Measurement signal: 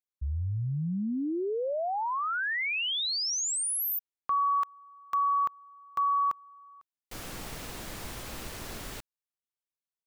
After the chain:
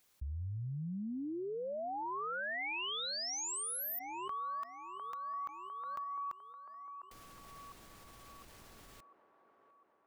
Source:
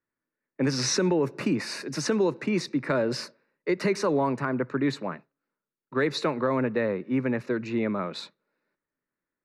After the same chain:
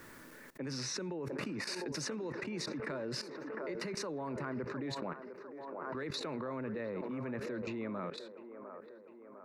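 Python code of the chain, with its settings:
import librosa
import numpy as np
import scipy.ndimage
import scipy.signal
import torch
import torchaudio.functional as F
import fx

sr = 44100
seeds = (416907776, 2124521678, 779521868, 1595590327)

y = fx.level_steps(x, sr, step_db=18)
y = fx.echo_wet_bandpass(y, sr, ms=703, feedback_pct=57, hz=690.0, wet_db=-7.5)
y = fx.pre_swell(y, sr, db_per_s=20.0)
y = y * 10.0 ** (-3.5 / 20.0)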